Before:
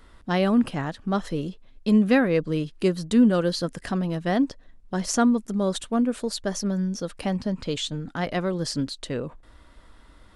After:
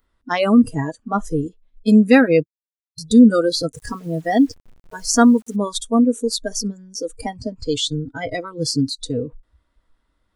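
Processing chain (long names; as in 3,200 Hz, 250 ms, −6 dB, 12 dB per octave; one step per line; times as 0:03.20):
0:02.43–0:02.98: silence
noise reduction from a noise print of the clip's start 25 dB
0:03.72–0:05.56: bit-depth reduction 10 bits, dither none
level +8 dB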